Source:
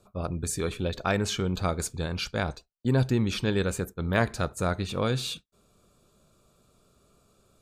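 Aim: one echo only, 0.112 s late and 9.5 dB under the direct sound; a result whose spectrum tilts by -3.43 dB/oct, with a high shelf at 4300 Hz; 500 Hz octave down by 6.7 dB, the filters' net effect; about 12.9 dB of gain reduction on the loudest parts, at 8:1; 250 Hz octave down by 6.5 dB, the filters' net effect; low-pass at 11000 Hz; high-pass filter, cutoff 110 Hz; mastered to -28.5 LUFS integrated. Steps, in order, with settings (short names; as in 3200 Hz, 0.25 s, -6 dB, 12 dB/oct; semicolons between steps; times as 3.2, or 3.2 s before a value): HPF 110 Hz; LPF 11000 Hz; bell 250 Hz -7 dB; bell 500 Hz -6.5 dB; high shelf 4300 Hz +5.5 dB; compressor 8:1, threshold -36 dBFS; echo 0.112 s -9.5 dB; gain +11 dB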